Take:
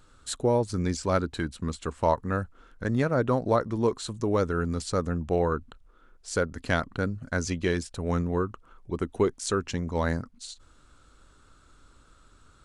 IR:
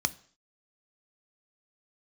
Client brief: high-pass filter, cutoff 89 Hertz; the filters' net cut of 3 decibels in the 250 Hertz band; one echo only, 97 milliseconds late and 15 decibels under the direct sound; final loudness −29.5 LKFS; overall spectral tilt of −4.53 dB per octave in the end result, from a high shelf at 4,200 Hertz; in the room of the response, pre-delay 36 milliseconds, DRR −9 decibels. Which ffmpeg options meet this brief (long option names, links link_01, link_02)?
-filter_complex "[0:a]highpass=89,equalizer=frequency=250:width_type=o:gain=-4,highshelf=frequency=4200:gain=6,aecho=1:1:97:0.178,asplit=2[link_01][link_02];[1:a]atrim=start_sample=2205,adelay=36[link_03];[link_02][link_03]afir=irnorm=-1:irlink=0,volume=2.5dB[link_04];[link_01][link_04]amix=inputs=2:normalize=0,volume=-9.5dB"